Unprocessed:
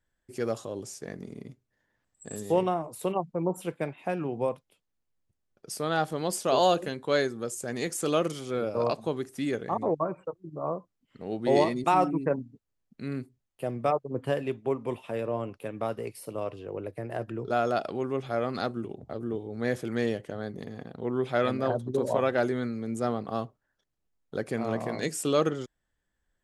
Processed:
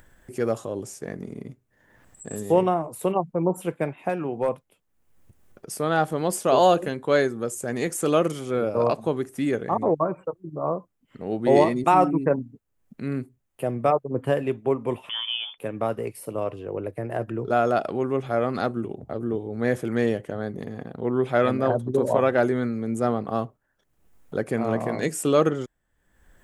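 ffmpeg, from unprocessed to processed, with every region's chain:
ffmpeg -i in.wav -filter_complex "[0:a]asettb=1/sr,asplit=3[link_01][link_02][link_03];[link_01]atrim=end=4.094[link_04];[link_02]atrim=start=4.09:end=4.49,asetpts=PTS-STARTPTS,afade=type=in:duration=0.004:curve=qsin,afade=type=out:start_time=0.396:duration=0.004:curve=qsin,lowshelf=frequency=240:gain=-6.5,asoftclip=type=hard:threshold=-22dB[link_05];[link_03]atrim=start=4.486[link_06];[link_04][link_05]acrossfade=duration=0.004:curve1=hsin:curve2=qsin[link_07];[link_07][link_06]acrossfade=duration=0.004:curve1=qsin:curve2=hsin,asettb=1/sr,asplit=3[link_08][link_09][link_10];[link_08]atrim=end=15.094[link_11];[link_09]atrim=start=15.09:end=15.58,asetpts=PTS-STARTPTS,afade=type=in:duration=0.004:curve=qsin,afade=type=out:start_time=0.486:duration=0.004:curve=qsin,lowpass=frequency=3100:width_type=q:width=0.5098,lowpass=frequency=3100:width_type=q:width=0.6013,lowpass=frequency=3100:width_type=q:width=0.9,lowpass=frequency=3100:width_type=q:width=2.563,afreqshift=-3600,bandreject=frequency=2000:width=15[link_12];[link_10]atrim=start=15.576[link_13];[link_11][link_12]acrossfade=duration=0.004:curve1=hsin:curve2=qsin[link_14];[link_14][link_13]acrossfade=duration=0.004:curve1=qsin:curve2=hsin,equalizer=frequency=4500:width_type=o:width=1.2:gain=-8,acompressor=mode=upward:threshold=-44dB:ratio=2.5,volume=5.5dB" out.wav

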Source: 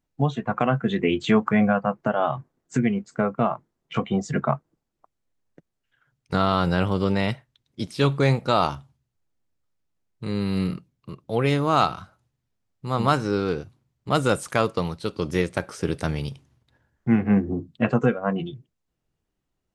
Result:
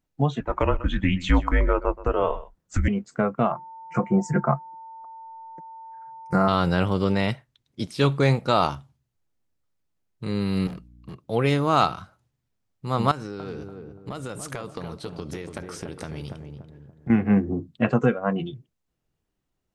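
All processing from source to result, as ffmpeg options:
ffmpeg -i in.wav -filter_complex "[0:a]asettb=1/sr,asplit=3[link_01][link_02][link_03];[link_01]atrim=end=0.404[link_04];[link_02]atrim=start=0.4:end=2.88,asetpts=PTS-STARTPTS,afade=type=in:duration=0.004:curve=qsin,afade=type=out:start_time=2.476:duration=0.004:curve=qsin,afreqshift=-160,aecho=1:1:126:0.141,atrim=end_sample=109368[link_05];[link_03]atrim=start=2.876[link_06];[link_04][link_05]acrossfade=duration=0.004:curve1=hsin:curve2=qsin[link_07];[link_07][link_06]acrossfade=duration=0.004:curve1=qsin:curve2=hsin,asettb=1/sr,asplit=3[link_08][link_09][link_10];[link_08]atrim=end=3.524[link_11];[link_09]atrim=start=3.52:end=6.48,asetpts=PTS-STARTPTS,afade=type=in:duration=0.004:curve=qsin,afade=type=out:start_time=2.956:duration=0.004:curve=qsin,aecho=1:1:5.7:0.63,atrim=end_sample=130536,aeval=exprs='val(0)+0.0112*sin(2*PI*900*n/s)':channel_layout=same,asuperstop=centerf=3400:order=4:qfactor=0.9[link_12];[link_10]atrim=start=6.476[link_13];[link_11][link_12]acrossfade=duration=0.004:curve1=hsin:curve2=qsin[link_14];[link_14][link_13]acrossfade=duration=0.004:curve1=qsin:curve2=hsin,asettb=1/sr,asplit=3[link_15][link_16][link_17];[link_15]atrim=end=10.674[link_18];[link_16]atrim=start=10.67:end=11.16,asetpts=PTS-STARTPTS,afade=type=in:duration=0.004:curve=qsin,afade=type=out:start_time=0.486:duration=0.004:curve=qsin,highpass=100,asoftclip=type=hard:threshold=-33.5dB,aeval=exprs='val(0)+0.00355*(sin(2*PI*60*n/s)+sin(2*PI*2*60*n/s)/2+sin(2*PI*3*60*n/s)/3+sin(2*PI*4*60*n/s)/4+sin(2*PI*5*60*n/s)/5)':channel_layout=same[link_19];[link_17]atrim=start=11.156[link_20];[link_18][link_19]acrossfade=duration=0.004:curve1=hsin:curve2=qsin[link_21];[link_21][link_20]acrossfade=duration=0.004:curve1=qsin:curve2=hsin,asettb=1/sr,asplit=3[link_22][link_23][link_24];[link_22]atrim=end=13.114[link_25];[link_23]atrim=start=13.11:end=17.1,asetpts=PTS-STARTPTS,afade=type=in:duration=0.004:curve=qsin,afade=type=out:start_time=3.986:duration=0.004:curve=qsin,acompressor=threshold=-29dB:ratio=16:attack=3.2:release=140:knee=1:detection=peak,asplit=2[link_26][link_27];[link_27]adelay=288,lowpass=frequency=900:poles=1,volume=-4.5dB,asplit=2[link_28][link_29];[link_29]adelay=288,lowpass=frequency=900:poles=1,volume=0.45,asplit=2[link_30][link_31];[link_31]adelay=288,lowpass=frequency=900:poles=1,volume=0.45,asplit=2[link_32][link_33];[link_33]adelay=288,lowpass=frequency=900:poles=1,volume=0.45,asplit=2[link_34][link_35];[link_35]adelay=288,lowpass=frequency=900:poles=1,volume=0.45,asplit=2[link_36][link_37];[link_37]adelay=288,lowpass=frequency=900:poles=1,volume=0.45[link_38];[link_26][link_28][link_30][link_32][link_34][link_36][link_38]amix=inputs=7:normalize=0,atrim=end_sample=175959[link_39];[link_24]atrim=start=17.096[link_40];[link_25][link_39]acrossfade=duration=0.004:curve1=hsin:curve2=qsin[link_41];[link_41][link_40]acrossfade=duration=0.004:curve1=qsin:curve2=hsin" out.wav

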